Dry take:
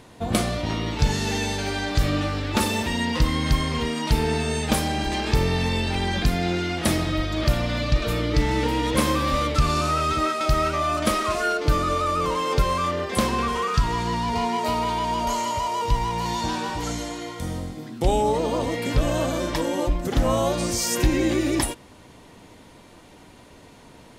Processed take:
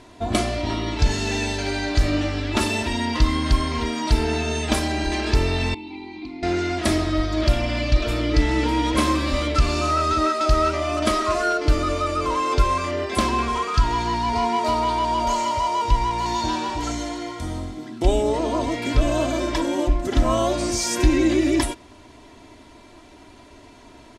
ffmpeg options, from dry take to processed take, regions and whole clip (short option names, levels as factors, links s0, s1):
-filter_complex "[0:a]asettb=1/sr,asplit=3[s0][s1][s2];[s0]atrim=end=5.744[s3];[s1]atrim=start=5.74:end=6.43,asetpts=PTS-STARTPTS,afade=t=in:d=0.004:c=qsin,afade=t=out:st=0.686:d=0.004:c=qsin,asplit=3[s4][s5][s6];[s4]bandpass=f=300:t=q:w=8,volume=1[s7];[s5]bandpass=f=870:t=q:w=8,volume=0.501[s8];[s6]bandpass=f=2240:t=q:w=8,volume=0.355[s9];[s7][s8][s9]amix=inputs=3:normalize=0,equalizer=f=4100:w=4:g=12.5[s10];[s2]atrim=start=6.426[s11];[s3][s10]acrossfade=d=0.004:c1=hsin:c2=qsin[s12];[s12][s11]acrossfade=d=0.004:c1=qsin:c2=hsin,lowpass=8600,aecho=1:1:3:0.66"